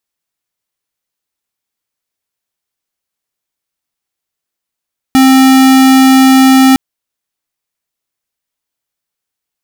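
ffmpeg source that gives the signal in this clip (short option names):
-f lavfi -i "aevalsrc='0.562*(2*lt(mod(264*t,1),0.5)-1)':d=1.61:s=44100"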